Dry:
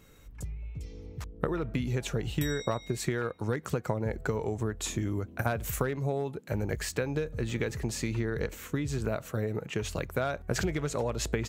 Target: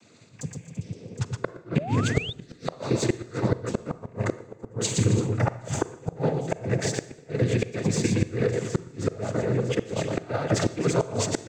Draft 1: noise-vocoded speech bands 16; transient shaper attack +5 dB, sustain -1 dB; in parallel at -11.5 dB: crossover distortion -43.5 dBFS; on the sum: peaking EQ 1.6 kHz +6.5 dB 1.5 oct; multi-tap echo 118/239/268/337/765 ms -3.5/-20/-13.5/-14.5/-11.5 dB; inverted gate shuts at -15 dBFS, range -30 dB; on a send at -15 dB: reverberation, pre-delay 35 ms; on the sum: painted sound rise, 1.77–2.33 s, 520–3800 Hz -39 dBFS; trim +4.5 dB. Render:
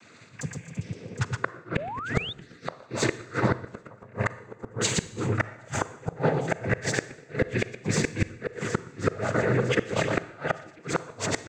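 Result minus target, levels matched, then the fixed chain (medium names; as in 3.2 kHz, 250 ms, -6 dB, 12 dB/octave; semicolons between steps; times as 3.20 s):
2 kHz band +7.0 dB
noise-vocoded speech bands 16; transient shaper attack +5 dB, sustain -1 dB; in parallel at -11.5 dB: crossover distortion -43.5 dBFS; on the sum: peaking EQ 1.6 kHz -4.5 dB 1.5 oct; multi-tap echo 118/239/268/337/765 ms -3.5/-20/-13.5/-14.5/-11.5 dB; inverted gate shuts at -15 dBFS, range -30 dB; on a send at -15 dB: reverberation, pre-delay 35 ms; on the sum: painted sound rise, 1.77–2.33 s, 520–3800 Hz -39 dBFS; trim +4.5 dB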